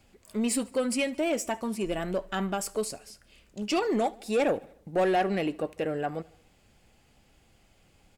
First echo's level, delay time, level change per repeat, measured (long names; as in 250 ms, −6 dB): −23.0 dB, 74 ms, −5.0 dB